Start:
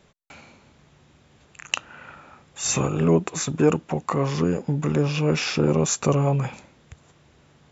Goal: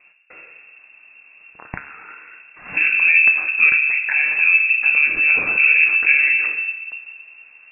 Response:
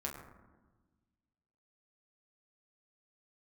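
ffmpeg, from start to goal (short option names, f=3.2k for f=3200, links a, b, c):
-filter_complex "[0:a]asplit=2[a][b];[1:a]atrim=start_sample=2205,lowshelf=f=500:g=9.5[c];[b][c]afir=irnorm=-1:irlink=0,volume=0dB[d];[a][d]amix=inputs=2:normalize=0,lowpass=f=2.4k:t=q:w=0.5098,lowpass=f=2.4k:t=q:w=0.6013,lowpass=f=2.4k:t=q:w=0.9,lowpass=f=2.4k:t=q:w=2.563,afreqshift=-2800,volume=-3.5dB"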